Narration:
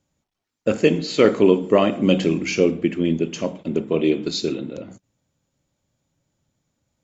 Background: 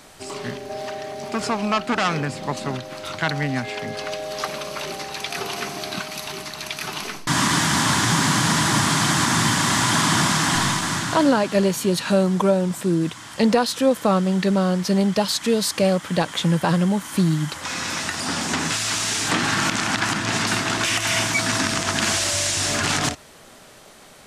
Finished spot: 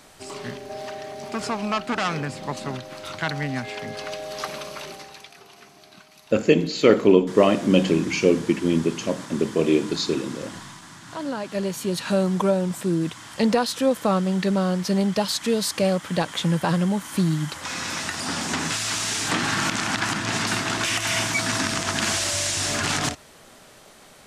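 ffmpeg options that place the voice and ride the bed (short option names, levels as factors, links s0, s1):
-filter_complex "[0:a]adelay=5650,volume=0.944[s0];[1:a]volume=5.01,afade=t=out:st=4.59:d=0.76:silence=0.149624,afade=t=in:st=11:d=1.27:silence=0.133352[s1];[s0][s1]amix=inputs=2:normalize=0"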